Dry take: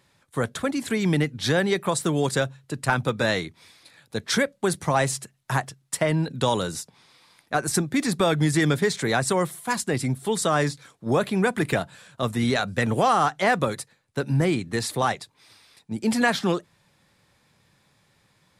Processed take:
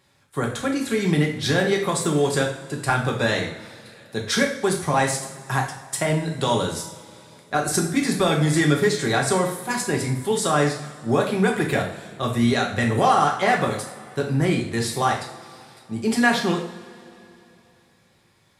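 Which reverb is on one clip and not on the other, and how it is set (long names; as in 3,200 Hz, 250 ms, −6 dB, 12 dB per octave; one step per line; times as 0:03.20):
coupled-rooms reverb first 0.53 s, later 3 s, from −19 dB, DRR 0 dB
level −1 dB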